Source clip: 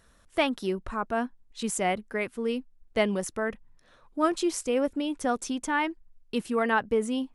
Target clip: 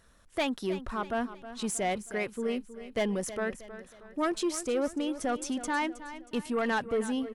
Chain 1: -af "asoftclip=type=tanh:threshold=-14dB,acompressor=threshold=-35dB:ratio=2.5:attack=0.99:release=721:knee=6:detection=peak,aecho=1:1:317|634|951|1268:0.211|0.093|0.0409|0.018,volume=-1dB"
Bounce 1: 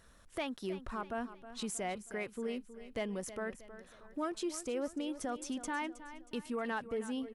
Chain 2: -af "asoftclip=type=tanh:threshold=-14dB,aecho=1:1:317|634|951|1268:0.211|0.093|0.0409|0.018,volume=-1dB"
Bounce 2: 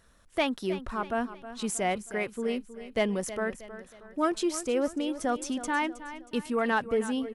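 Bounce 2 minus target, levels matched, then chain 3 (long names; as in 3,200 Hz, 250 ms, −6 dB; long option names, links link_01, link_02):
soft clipping: distortion −10 dB
-af "asoftclip=type=tanh:threshold=-21.5dB,aecho=1:1:317|634|951|1268:0.211|0.093|0.0409|0.018,volume=-1dB"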